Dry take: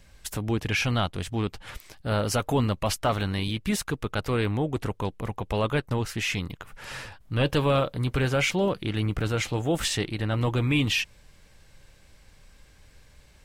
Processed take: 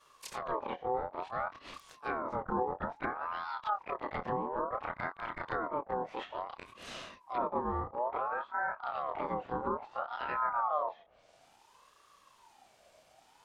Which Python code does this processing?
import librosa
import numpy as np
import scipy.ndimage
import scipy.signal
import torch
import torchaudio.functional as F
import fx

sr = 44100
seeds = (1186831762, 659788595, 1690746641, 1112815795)

y = fx.frame_reverse(x, sr, frame_ms=66.0)
y = fx.low_shelf(y, sr, hz=93.0, db=-7.0)
y = fx.env_lowpass_down(y, sr, base_hz=390.0, full_db=-26.0)
y = fx.ring_lfo(y, sr, carrier_hz=890.0, swing_pct=30, hz=0.58)